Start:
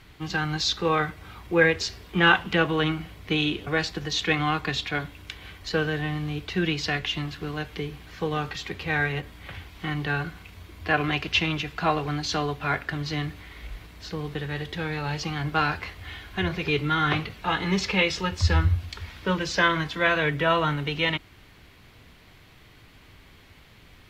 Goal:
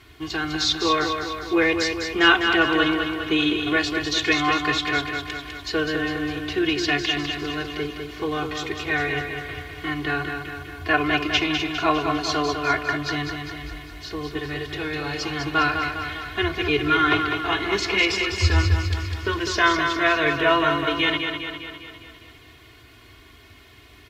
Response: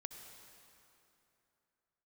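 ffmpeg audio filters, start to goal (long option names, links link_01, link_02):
-filter_complex "[0:a]highpass=59,bandreject=frequency=780:width=12,aecho=1:1:2.8:0.98,asplit=2[link_01][link_02];[link_02]aecho=0:1:202|404|606|808|1010|1212|1414|1616:0.501|0.291|0.169|0.0978|0.0567|0.0329|0.0191|0.0111[link_03];[link_01][link_03]amix=inputs=2:normalize=0"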